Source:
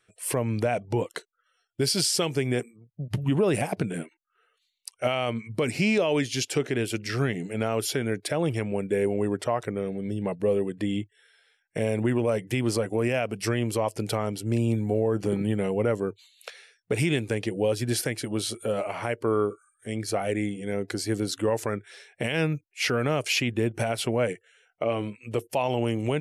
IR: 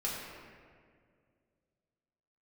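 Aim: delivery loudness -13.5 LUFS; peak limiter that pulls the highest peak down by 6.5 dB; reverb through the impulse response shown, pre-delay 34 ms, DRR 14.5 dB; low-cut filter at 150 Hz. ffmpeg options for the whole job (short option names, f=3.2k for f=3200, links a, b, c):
-filter_complex "[0:a]highpass=150,alimiter=limit=-19dB:level=0:latency=1,asplit=2[a][b];[1:a]atrim=start_sample=2205,adelay=34[c];[b][c]afir=irnorm=-1:irlink=0,volume=-19dB[d];[a][d]amix=inputs=2:normalize=0,volume=16.5dB"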